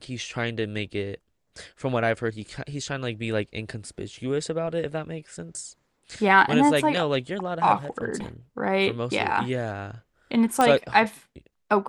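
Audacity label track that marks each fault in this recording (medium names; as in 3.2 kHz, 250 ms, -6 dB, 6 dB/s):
10.610000	10.610000	pop -8 dBFS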